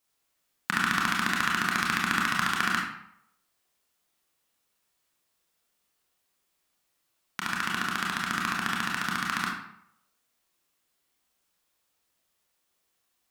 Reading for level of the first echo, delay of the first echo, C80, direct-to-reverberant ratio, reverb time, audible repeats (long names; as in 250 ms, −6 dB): no echo audible, no echo audible, 6.0 dB, −3.0 dB, 0.75 s, no echo audible